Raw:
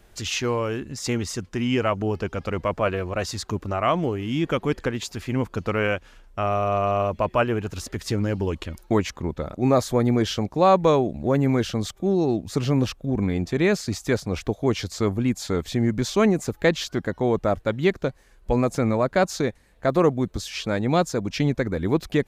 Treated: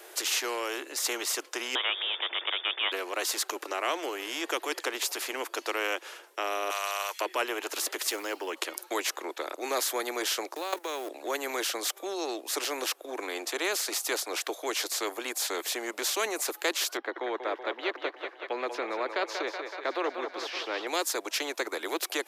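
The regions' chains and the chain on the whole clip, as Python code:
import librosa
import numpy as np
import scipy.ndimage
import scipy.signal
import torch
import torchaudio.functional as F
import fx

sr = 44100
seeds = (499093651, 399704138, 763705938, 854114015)

y = fx.chain(x, sr, fx.crossing_spikes(level_db=-28.0),
    fx.freq_invert(carrier_hz=3500), at=(1.75, 2.92))
y = fx.chain(y, sr, fx.highpass(hz=880.0, slope=24),
    fx.peak_eq(hz=8800.0, db=11.0, octaves=2.6), at=(6.7, 7.21))
y = fx.chain(y, sr, fx.quant_float(bits=6),
    fx.band_widen(depth_pct=70), at=(8.07, 8.57))
y = fx.chain(y, sr, fx.law_mismatch(coded='A'),
    fx.highpass(hz=56.0, slope=12),
    fx.level_steps(step_db=14), at=(10.54, 11.1))
y = fx.chain(y, sr, fx.air_absorb(metres=330.0),
    fx.echo_thinned(ms=188, feedback_pct=63, hz=410.0, wet_db=-10), at=(16.97, 20.87))
y = scipy.signal.sosfilt(scipy.signal.butter(12, 330.0, 'highpass', fs=sr, output='sos'), y)
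y = fx.peak_eq(y, sr, hz=12000.0, db=7.0, octaves=0.78)
y = fx.spectral_comp(y, sr, ratio=2.0)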